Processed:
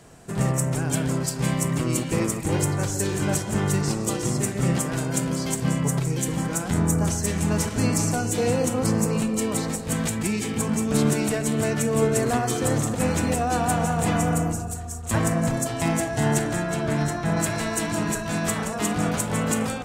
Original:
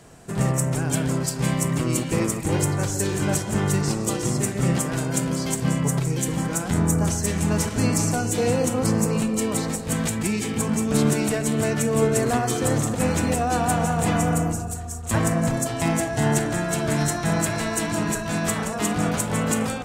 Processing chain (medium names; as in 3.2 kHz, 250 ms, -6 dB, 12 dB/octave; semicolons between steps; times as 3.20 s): 16.62–17.36 s: treble shelf 6.4 kHz -> 3.3 kHz -10 dB; trim -1 dB